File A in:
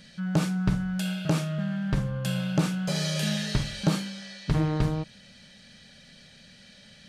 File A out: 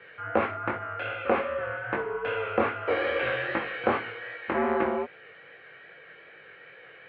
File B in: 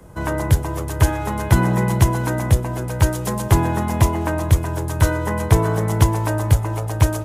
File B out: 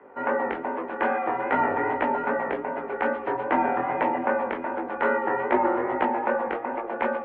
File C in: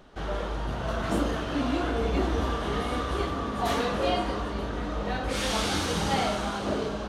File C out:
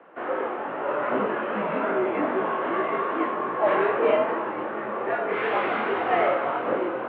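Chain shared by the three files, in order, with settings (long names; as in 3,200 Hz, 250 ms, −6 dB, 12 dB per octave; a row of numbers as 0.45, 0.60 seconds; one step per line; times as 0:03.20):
chorus effect 2.5 Hz, delay 17 ms, depth 6.7 ms
single-sideband voice off tune −81 Hz 410–2,400 Hz
normalise the peak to −9 dBFS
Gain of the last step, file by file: +12.5, +4.5, +9.5 decibels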